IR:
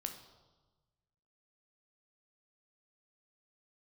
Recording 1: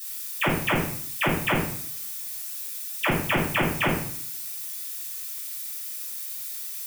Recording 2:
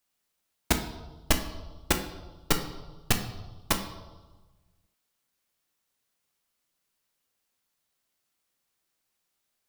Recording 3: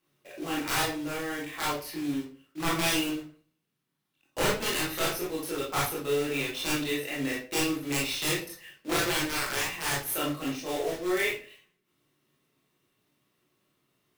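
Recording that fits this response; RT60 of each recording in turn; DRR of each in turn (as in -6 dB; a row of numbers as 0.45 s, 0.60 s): 2; 0.60 s, 1.3 s, 0.40 s; -7.5 dB, 5.0 dB, -6.5 dB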